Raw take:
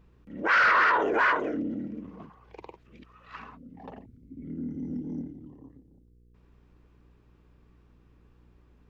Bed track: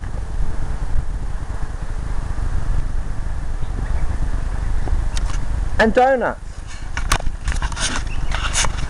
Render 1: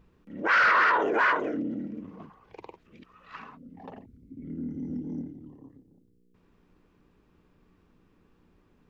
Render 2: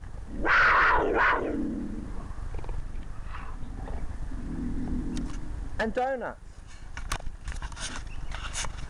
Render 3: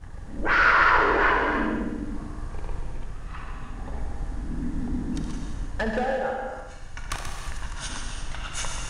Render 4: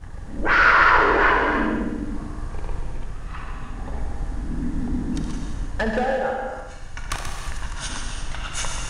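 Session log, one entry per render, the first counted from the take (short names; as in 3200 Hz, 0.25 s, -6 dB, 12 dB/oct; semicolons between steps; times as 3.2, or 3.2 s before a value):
de-hum 60 Hz, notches 2
add bed track -14.5 dB
multi-head echo 67 ms, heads first and second, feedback 43%, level -9.5 dB; non-linear reverb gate 0.37 s flat, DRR 2.5 dB
gain +3.5 dB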